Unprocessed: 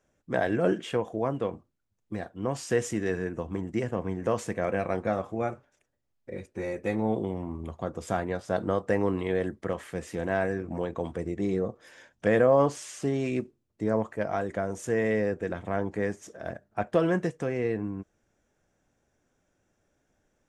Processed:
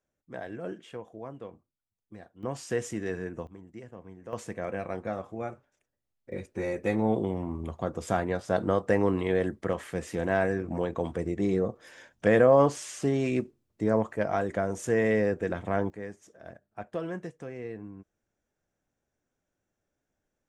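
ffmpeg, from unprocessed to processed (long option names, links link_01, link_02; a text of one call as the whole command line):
ffmpeg -i in.wav -af "asetnsamples=nb_out_samples=441:pad=0,asendcmd='2.43 volume volume -4dB;3.47 volume volume -15.5dB;4.33 volume volume -5.5dB;6.32 volume volume 1.5dB;15.9 volume volume -10dB',volume=-12.5dB" out.wav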